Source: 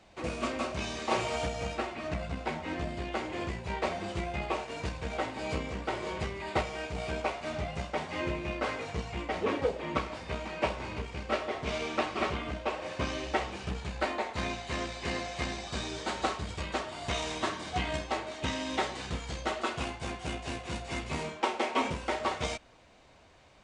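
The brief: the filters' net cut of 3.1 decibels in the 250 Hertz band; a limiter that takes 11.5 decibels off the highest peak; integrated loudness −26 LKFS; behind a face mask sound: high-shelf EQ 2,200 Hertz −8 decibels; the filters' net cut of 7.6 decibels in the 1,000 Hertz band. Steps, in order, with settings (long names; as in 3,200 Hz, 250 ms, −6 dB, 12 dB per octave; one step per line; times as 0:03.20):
parametric band 250 Hz −3.5 dB
parametric band 1,000 Hz −8.5 dB
brickwall limiter −27.5 dBFS
high-shelf EQ 2,200 Hz −8 dB
level +14.5 dB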